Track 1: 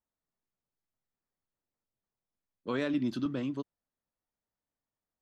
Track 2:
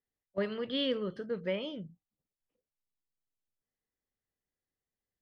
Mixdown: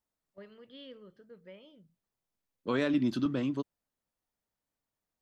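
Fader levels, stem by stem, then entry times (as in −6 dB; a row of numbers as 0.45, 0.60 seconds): +2.5, −17.5 decibels; 0.00, 0.00 seconds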